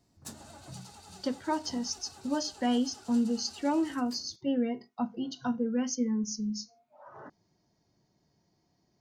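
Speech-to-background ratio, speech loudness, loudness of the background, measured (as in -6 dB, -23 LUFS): 18.0 dB, -32.0 LUFS, -50.0 LUFS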